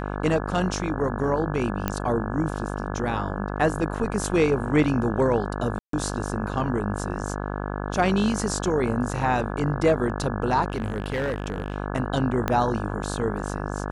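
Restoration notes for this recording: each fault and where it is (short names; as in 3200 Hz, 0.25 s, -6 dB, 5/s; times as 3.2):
buzz 50 Hz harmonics 34 -30 dBFS
1.88 pop -10 dBFS
5.79–5.93 gap 0.143 s
10.7–11.76 clipped -22 dBFS
12.48 pop -10 dBFS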